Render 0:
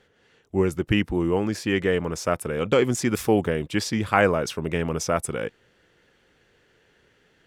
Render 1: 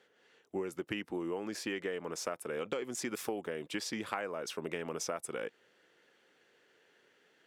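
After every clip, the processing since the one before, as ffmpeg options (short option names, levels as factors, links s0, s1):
-af "highpass=290,acompressor=threshold=0.0398:ratio=10,volume=0.562"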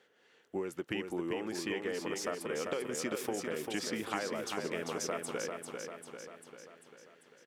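-af "aecho=1:1:395|790|1185|1580|1975|2370|2765|3160:0.562|0.321|0.183|0.104|0.0594|0.0338|0.0193|0.011"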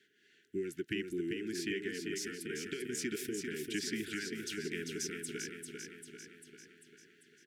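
-af "asuperstop=centerf=790:order=20:qfactor=0.76"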